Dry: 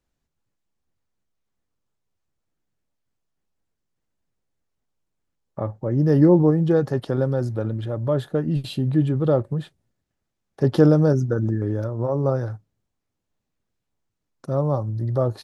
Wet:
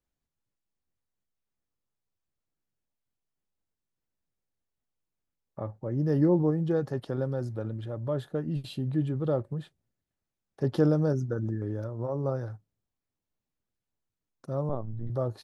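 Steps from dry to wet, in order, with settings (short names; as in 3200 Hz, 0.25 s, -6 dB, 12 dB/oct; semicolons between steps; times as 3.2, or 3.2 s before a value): 14.69–15.1 LPC vocoder at 8 kHz pitch kept; gain -8.5 dB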